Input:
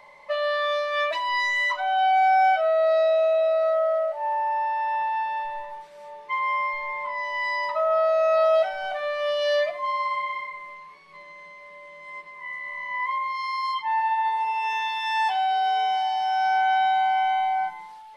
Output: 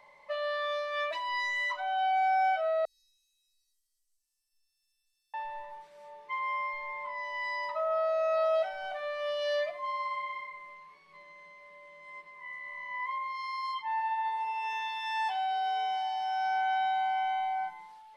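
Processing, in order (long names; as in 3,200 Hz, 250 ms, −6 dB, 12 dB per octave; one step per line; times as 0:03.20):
0:02.85–0:05.34: inverse Chebyshev band-stop filter 120–1,300 Hz, stop band 80 dB
level −8 dB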